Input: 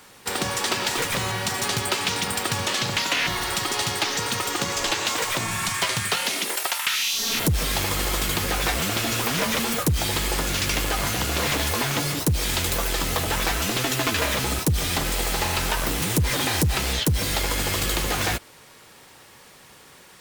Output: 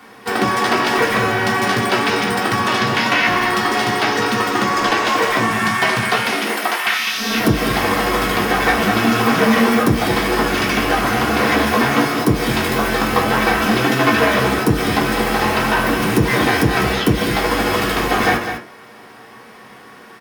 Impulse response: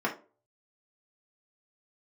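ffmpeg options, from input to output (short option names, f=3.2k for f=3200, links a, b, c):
-filter_complex "[0:a]aecho=1:1:203:0.376[a];[1:a]atrim=start_sample=2205[b];[a][b]afir=irnorm=-1:irlink=0"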